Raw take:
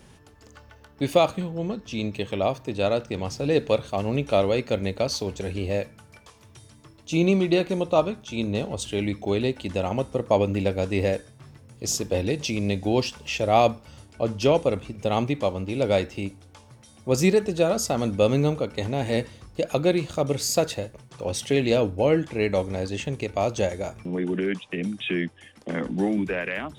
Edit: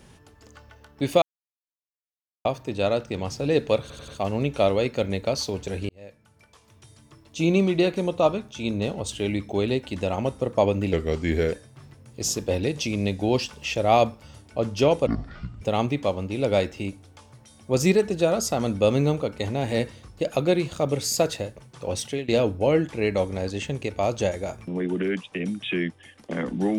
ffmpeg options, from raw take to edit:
ffmpeg -i in.wav -filter_complex "[0:a]asplit=12[link_01][link_02][link_03][link_04][link_05][link_06][link_07][link_08][link_09][link_10][link_11][link_12];[link_01]atrim=end=1.22,asetpts=PTS-STARTPTS,afade=type=out:start_time=1.216:duration=0.004:curve=hsin[link_13];[link_02]atrim=start=1.22:end=2.45,asetpts=PTS-STARTPTS,volume=0[link_14];[link_03]atrim=start=2.45:end=3.902,asetpts=PTS-STARTPTS,afade=type=in:duration=0.004:curve=hsin[link_15];[link_04]atrim=start=3.808:end=3.902[link_16];[link_05]atrim=start=3.808:end=3.902[link_17];[link_06]atrim=start=3.808:end=5.62,asetpts=PTS-STARTPTS,afade=type=out:start_time=1.808:duration=0.004:curve=hsin[link_18];[link_07]atrim=start=5.62:end=10.664,asetpts=PTS-STARTPTS,afade=type=in:duration=1.78:curve=qsin[link_19];[link_08]atrim=start=10.66:end=11.16,asetpts=PTS-STARTPTS,asetrate=37044,aresample=44100[link_20];[link_09]atrim=start=11.156:end=14.704[link_21];[link_10]atrim=start=14.7:end=14.99,asetpts=PTS-STARTPTS,asetrate=23373,aresample=44100,atrim=end_sample=24130,asetpts=PTS-STARTPTS[link_22];[link_11]atrim=start=14.986:end=21.66,asetpts=PTS-STARTPTS,afade=type=out:start_time=6.374:duration=0.3:silence=0.112202[link_23];[link_12]atrim=start=21.66,asetpts=PTS-STARTPTS,afade=type=in:duration=0.004:curve=hsin:silence=0.112202[link_24];[link_13][link_14][link_15]concat=n=3:v=0:a=1[link_25];[link_25][link_16]acrossfade=duration=0.004:curve1=hsin:curve2=hsin[link_26];[link_26][link_17]acrossfade=duration=0.004:curve1=hsin:curve2=hsin[link_27];[link_18][link_19]concat=n=2:v=0:a=1[link_28];[link_27][link_28]acrossfade=duration=0.004:curve1=hsin:curve2=hsin[link_29];[link_29][link_20]acrossfade=duration=0.004:curve1=hsin:curve2=hsin[link_30];[link_30][link_21]acrossfade=duration=0.004:curve1=hsin:curve2=hsin[link_31];[link_31][link_22]acrossfade=duration=0.004:curve1=hsin:curve2=hsin[link_32];[link_23][link_24]concat=n=2:v=0:a=1[link_33];[link_32][link_33]acrossfade=duration=0.004:curve1=hsin:curve2=hsin" out.wav

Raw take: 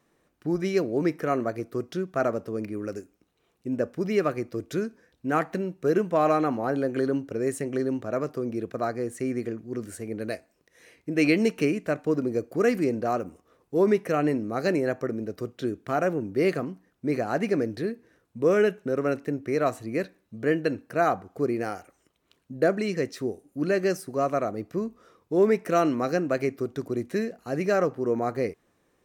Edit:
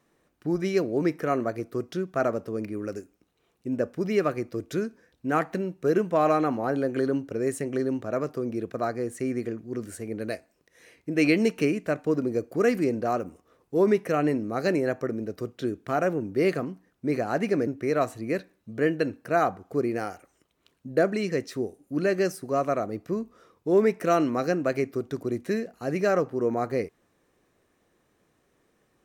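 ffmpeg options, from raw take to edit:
ffmpeg -i in.wav -filter_complex "[0:a]asplit=2[link_01][link_02];[link_01]atrim=end=17.672[link_03];[link_02]atrim=start=19.318[link_04];[link_03][link_04]acrossfade=duration=0.004:curve1=hsin:curve2=hsin" out.wav

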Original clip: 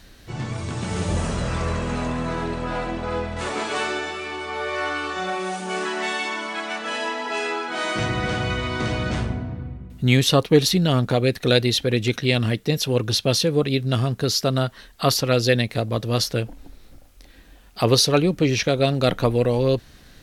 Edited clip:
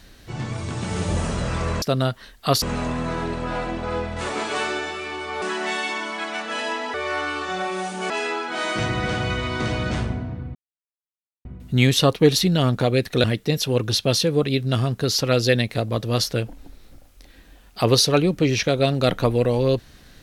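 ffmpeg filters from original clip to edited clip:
ffmpeg -i in.wav -filter_complex "[0:a]asplit=9[link_01][link_02][link_03][link_04][link_05][link_06][link_07][link_08][link_09];[link_01]atrim=end=1.822[link_10];[link_02]atrim=start=14.378:end=15.182[link_11];[link_03]atrim=start=1.818:end=4.622[link_12];[link_04]atrim=start=5.778:end=7.302[link_13];[link_05]atrim=start=4.618:end=5.782[link_14];[link_06]atrim=start=7.298:end=9.75,asetpts=PTS-STARTPTS,afade=type=out:start_time=2.448:duration=0.004:curve=hsin,apad=pad_dur=0.9[link_15];[link_07]atrim=start=9.75:end=11.542,asetpts=PTS-STARTPTS,afade=type=in:duration=0.004:curve=hsin[link_16];[link_08]atrim=start=12.438:end=14.382[link_17];[link_09]atrim=start=15.178[link_18];[link_10][link_11]acrossfade=duration=0.004:curve1=hsin:curve2=hsin[link_19];[link_19][link_12]acrossfade=duration=0.004:curve1=hsin:curve2=hsin[link_20];[link_20][link_13]acrossfade=duration=0.004:curve1=hsin:curve2=hsin[link_21];[link_21][link_14]acrossfade=duration=0.004:curve1=hsin:curve2=hsin[link_22];[link_15][link_16]concat=n=2:v=0:a=1[link_23];[link_22][link_23]acrossfade=duration=0.004:curve1=hsin:curve2=hsin[link_24];[link_24][link_17]acrossfade=duration=0.004:curve1=hsin:curve2=hsin[link_25];[link_25][link_18]acrossfade=duration=0.004:curve1=hsin:curve2=hsin" out.wav

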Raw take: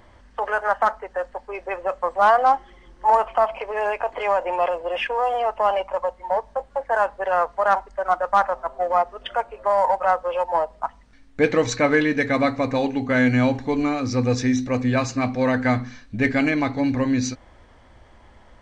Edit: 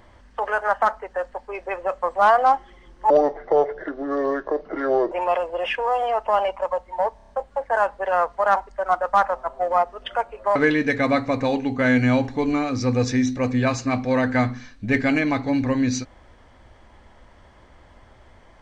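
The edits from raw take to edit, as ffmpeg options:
ffmpeg -i in.wav -filter_complex "[0:a]asplit=8[link_01][link_02][link_03][link_04][link_05][link_06][link_07][link_08];[link_01]atrim=end=3.104[link_09];[link_02]atrim=start=3.1:end=4.43,asetpts=PTS-STARTPTS,asetrate=29106,aresample=44100,atrim=end_sample=88868,asetpts=PTS-STARTPTS[link_10];[link_03]atrim=start=4.426:end=6.512[link_11];[link_04]atrim=start=6.478:end=6.512[link_12];[link_05]atrim=start=6.478:end=6.512[link_13];[link_06]atrim=start=6.478:end=6.512[link_14];[link_07]atrim=start=6.478:end=9.752[link_15];[link_08]atrim=start=11.858[link_16];[link_09][link_10]acrossfade=duration=0.004:curve1=hsin:curve2=hsin[link_17];[link_17][link_11]acrossfade=duration=0.004:curve1=hsin:curve2=hsin[link_18];[link_18][link_12]acrossfade=duration=0.004:curve1=hsin:curve2=hsin[link_19];[link_19][link_13]acrossfade=duration=0.004:curve1=hsin:curve2=hsin[link_20];[link_20][link_14]acrossfade=duration=0.004:curve1=hsin:curve2=hsin[link_21];[link_21][link_15]acrossfade=duration=0.004:curve1=hsin:curve2=hsin[link_22];[link_22][link_16]acrossfade=duration=0.004:curve1=hsin:curve2=hsin" out.wav

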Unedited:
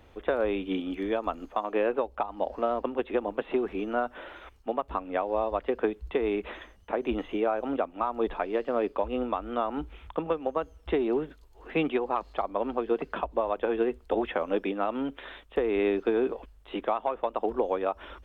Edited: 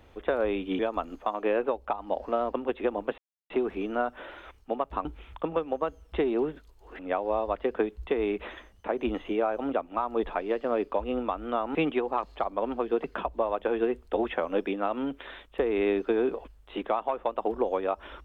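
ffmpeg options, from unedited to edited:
ffmpeg -i in.wav -filter_complex "[0:a]asplit=6[link_01][link_02][link_03][link_04][link_05][link_06];[link_01]atrim=end=0.792[link_07];[link_02]atrim=start=1.088:end=3.48,asetpts=PTS-STARTPTS,afade=type=out:start_time=2.388:duration=0.004:curve=hsin,apad=pad_dur=0.32[link_08];[link_03]atrim=start=3.48:end=5.032,asetpts=PTS-STARTPTS,afade=type=in:duration=0.004:curve=hsin[link_09];[link_04]atrim=start=9.788:end=11.732[link_10];[link_05]atrim=start=5.028:end=9.792[link_11];[link_06]atrim=start=11.728[link_12];[link_08][link_09]concat=n=2:v=0:a=1[link_13];[link_07][link_13]acrossfade=duration=0.004:curve1=hsin:curve2=hsin[link_14];[link_14][link_10]acrossfade=duration=0.004:curve1=hsin:curve2=hsin[link_15];[link_15][link_11]acrossfade=duration=0.004:curve1=hsin:curve2=hsin[link_16];[link_16][link_12]acrossfade=duration=0.004:curve1=hsin:curve2=hsin" out.wav

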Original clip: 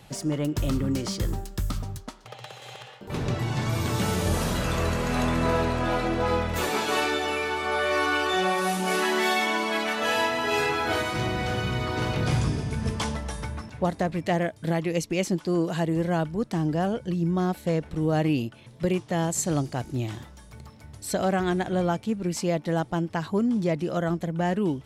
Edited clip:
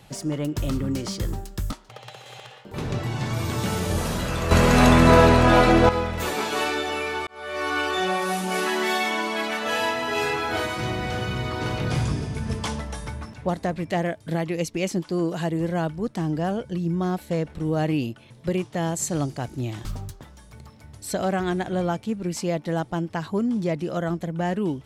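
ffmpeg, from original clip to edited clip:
ffmpeg -i in.wav -filter_complex "[0:a]asplit=7[link_01][link_02][link_03][link_04][link_05][link_06][link_07];[link_01]atrim=end=1.722[link_08];[link_02]atrim=start=2.078:end=4.872[link_09];[link_03]atrim=start=4.868:end=6.252,asetpts=PTS-STARTPTS,volume=10dB[link_10];[link_04]atrim=start=6.248:end=7.63,asetpts=PTS-STARTPTS,afade=type=out:start_time=1.378:duration=0.004:curve=hsin[link_11];[link_05]atrim=start=7.63:end=20.212,asetpts=PTS-STARTPTS,afade=type=in:duration=0.51[link_12];[link_06]atrim=start=1.718:end=2.082[link_13];[link_07]atrim=start=20.208[link_14];[link_08][link_09]acrossfade=duration=0.004:curve1=hsin:curve2=hsin[link_15];[link_15][link_10]acrossfade=duration=0.004:curve1=hsin:curve2=hsin[link_16];[link_11][link_12]concat=n=2:v=0:a=1[link_17];[link_16][link_17]acrossfade=duration=0.004:curve1=hsin:curve2=hsin[link_18];[link_18][link_13]acrossfade=duration=0.004:curve1=hsin:curve2=hsin[link_19];[link_19][link_14]acrossfade=duration=0.004:curve1=hsin:curve2=hsin" out.wav

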